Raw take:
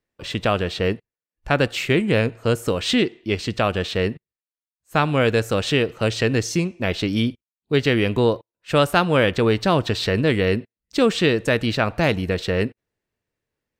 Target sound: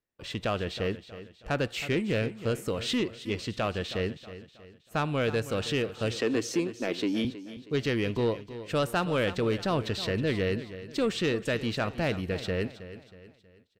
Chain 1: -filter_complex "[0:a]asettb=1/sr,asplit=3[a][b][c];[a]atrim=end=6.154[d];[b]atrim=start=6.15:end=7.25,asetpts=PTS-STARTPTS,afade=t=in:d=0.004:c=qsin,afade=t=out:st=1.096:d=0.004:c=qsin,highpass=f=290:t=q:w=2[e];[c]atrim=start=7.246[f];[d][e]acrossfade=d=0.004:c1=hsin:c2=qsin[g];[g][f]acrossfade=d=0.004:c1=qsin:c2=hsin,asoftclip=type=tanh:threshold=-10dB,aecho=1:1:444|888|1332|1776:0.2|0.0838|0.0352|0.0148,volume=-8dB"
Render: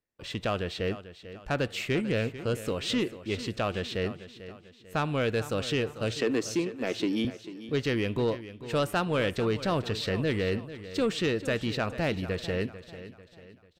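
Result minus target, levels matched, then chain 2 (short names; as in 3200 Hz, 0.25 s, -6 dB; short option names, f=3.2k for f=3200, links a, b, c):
echo 0.125 s late
-filter_complex "[0:a]asettb=1/sr,asplit=3[a][b][c];[a]atrim=end=6.154[d];[b]atrim=start=6.15:end=7.25,asetpts=PTS-STARTPTS,afade=t=in:d=0.004:c=qsin,afade=t=out:st=1.096:d=0.004:c=qsin,highpass=f=290:t=q:w=2[e];[c]atrim=start=7.246[f];[d][e]acrossfade=d=0.004:c1=hsin:c2=qsin[g];[g][f]acrossfade=d=0.004:c1=qsin:c2=hsin,asoftclip=type=tanh:threshold=-10dB,aecho=1:1:319|638|957|1276:0.2|0.0838|0.0352|0.0148,volume=-8dB"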